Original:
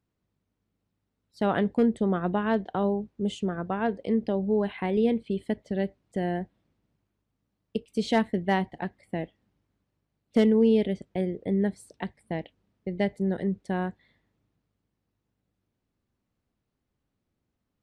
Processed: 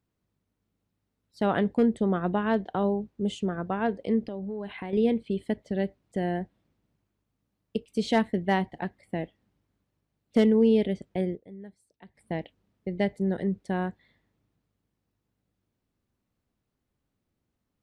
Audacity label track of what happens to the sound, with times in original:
4.250000	4.930000	compressor 5:1, threshold -32 dBFS
11.340000	12.170000	dip -18.5 dB, fades 0.34 s exponential

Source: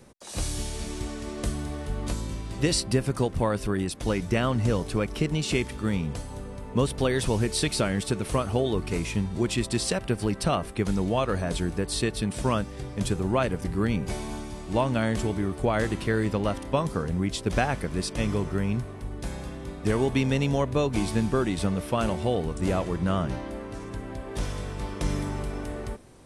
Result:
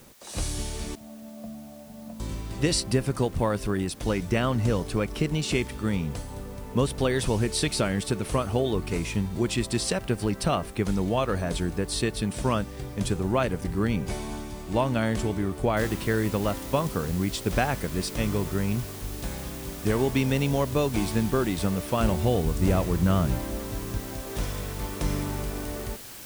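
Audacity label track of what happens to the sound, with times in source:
0.950000	2.200000	double band-pass 380 Hz, apart 1.5 oct
15.770000	15.770000	noise floor step -56 dB -43 dB
22.000000	23.980000	low shelf 160 Hz +8 dB

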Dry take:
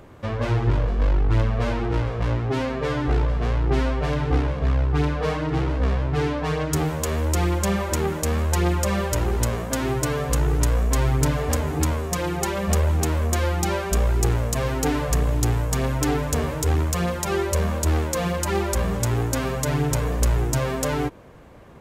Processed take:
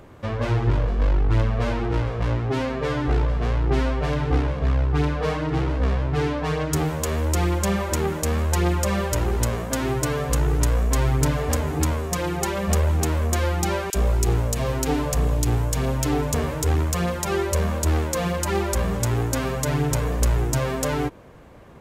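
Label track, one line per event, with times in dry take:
13.900000	16.340000	bands offset in time highs, lows 40 ms, split 1700 Hz

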